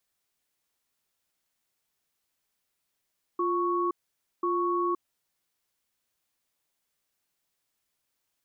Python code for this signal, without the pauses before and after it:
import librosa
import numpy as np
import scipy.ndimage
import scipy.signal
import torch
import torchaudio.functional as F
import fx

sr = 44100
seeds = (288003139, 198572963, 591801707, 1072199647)

y = fx.cadence(sr, length_s=1.63, low_hz=350.0, high_hz=1110.0, on_s=0.52, off_s=0.52, level_db=-27.0)